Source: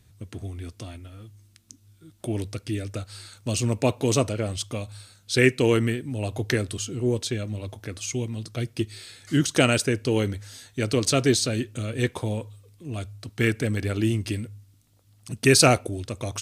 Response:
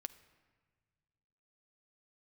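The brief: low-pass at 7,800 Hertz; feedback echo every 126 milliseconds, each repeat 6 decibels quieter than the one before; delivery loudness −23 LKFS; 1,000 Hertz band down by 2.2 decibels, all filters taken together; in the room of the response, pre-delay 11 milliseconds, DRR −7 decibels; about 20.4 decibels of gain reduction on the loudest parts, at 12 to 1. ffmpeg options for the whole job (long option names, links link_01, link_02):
-filter_complex "[0:a]lowpass=7800,equalizer=frequency=1000:width_type=o:gain=-3.5,acompressor=threshold=-34dB:ratio=12,aecho=1:1:126|252|378|504|630|756:0.501|0.251|0.125|0.0626|0.0313|0.0157,asplit=2[link_01][link_02];[1:a]atrim=start_sample=2205,adelay=11[link_03];[link_02][link_03]afir=irnorm=-1:irlink=0,volume=10.5dB[link_04];[link_01][link_04]amix=inputs=2:normalize=0,volume=8dB"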